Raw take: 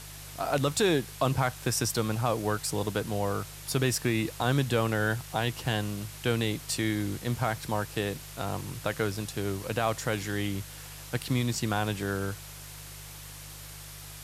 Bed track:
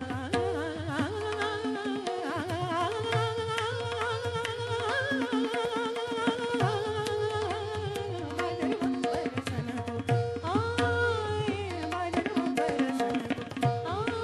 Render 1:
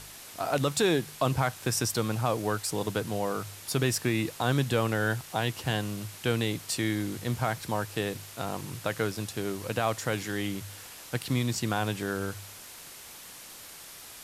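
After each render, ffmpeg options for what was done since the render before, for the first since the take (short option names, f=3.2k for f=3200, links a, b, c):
-af "bandreject=f=50:t=h:w=4,bandreject=f=100:t=h:w=4,bandreject=f=150:t=h:w=4"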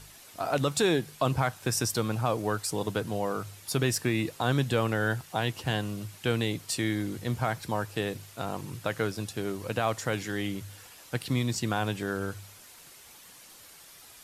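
-af "afftdn=nr=7:nf=-47"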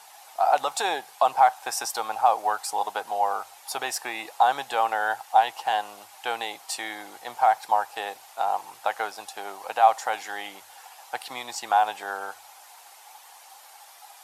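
-af "highpass=f=800:t=q:w=8.8"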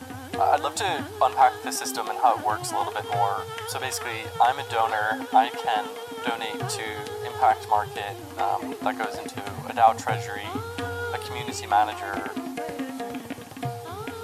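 -filter_complex "[1:a]volume=-4dB[a];[0:a][a]amix=inputs=2:normalize=0"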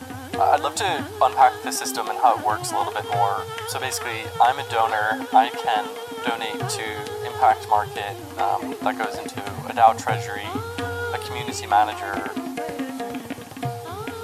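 -af "volume=3dB"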